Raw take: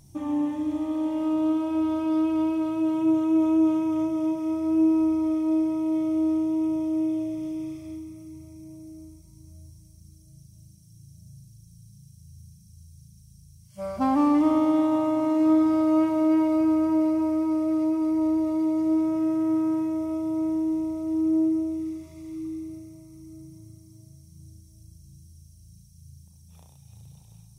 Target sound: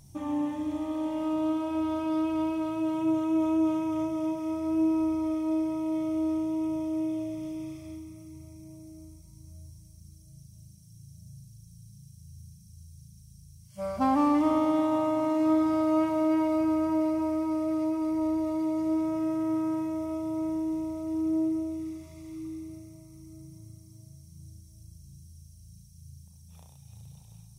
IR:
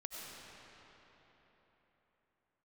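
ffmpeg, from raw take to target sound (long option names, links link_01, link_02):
-af "equalizer=frequency=330:width=2.2:gain=-5"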